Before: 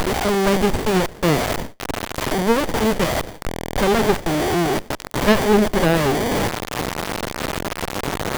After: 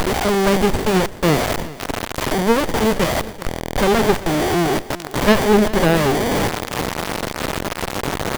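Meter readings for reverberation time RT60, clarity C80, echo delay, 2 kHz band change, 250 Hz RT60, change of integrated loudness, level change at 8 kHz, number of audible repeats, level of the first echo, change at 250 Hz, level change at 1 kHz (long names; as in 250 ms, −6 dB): no reverb audible, no reverb audible, 389 ms, +1.5 dB, no reverb audible, +1.5 dB, +1.5 dB, 1, −18.0 dB, +1.5 dB, +1.5 dB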